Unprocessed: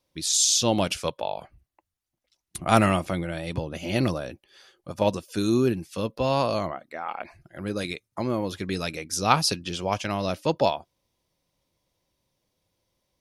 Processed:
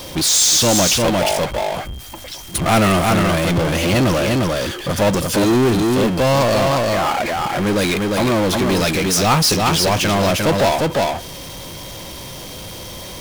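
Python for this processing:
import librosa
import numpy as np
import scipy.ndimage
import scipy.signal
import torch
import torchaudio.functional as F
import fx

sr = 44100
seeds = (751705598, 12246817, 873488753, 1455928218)

y = x + 10.0 ** (-6.5 / 20.0) * np.pad(x, (int(352 * sr / 1000.0), 0))[:len(x)]
y = fx.power_curve(y, sr, exponent=0.35)
y = y + 10.0 ** (-38.0 / 20.0) * np.sin(2.0 * np.pi * 3200.0 * np.arange(len(y)) / sr)
y = y * 10.0 ** (-3.0 / 20.0)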